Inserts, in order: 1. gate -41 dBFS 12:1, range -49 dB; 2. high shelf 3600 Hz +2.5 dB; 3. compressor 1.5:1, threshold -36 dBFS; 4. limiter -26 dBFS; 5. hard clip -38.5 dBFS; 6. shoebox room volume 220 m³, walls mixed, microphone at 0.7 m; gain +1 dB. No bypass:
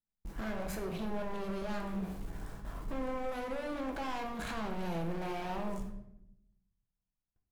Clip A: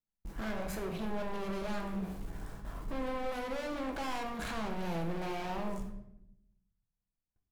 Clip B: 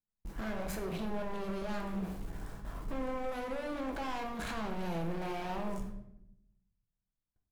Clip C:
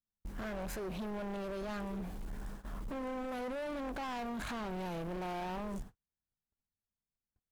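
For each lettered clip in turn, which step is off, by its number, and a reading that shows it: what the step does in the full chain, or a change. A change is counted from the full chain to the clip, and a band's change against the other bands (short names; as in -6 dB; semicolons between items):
4, mean gain reduction 2.5 dB; 3, mean gain reduction 4.0 dB; 6, echo-to-direct -3.0 dB to none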